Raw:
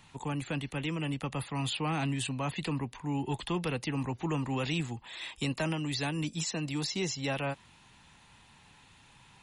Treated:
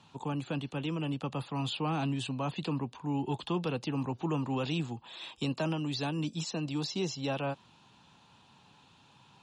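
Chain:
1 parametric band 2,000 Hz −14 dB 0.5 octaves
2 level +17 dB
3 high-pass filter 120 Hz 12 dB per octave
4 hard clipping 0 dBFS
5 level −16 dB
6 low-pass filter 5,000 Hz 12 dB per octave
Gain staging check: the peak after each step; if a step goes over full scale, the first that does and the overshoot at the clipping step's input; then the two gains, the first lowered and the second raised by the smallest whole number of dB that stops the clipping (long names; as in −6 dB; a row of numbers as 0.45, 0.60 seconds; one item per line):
−22.5, −5.5, −4.5, −4.5, −20.5, −20.5 dBFS
no step passes full scale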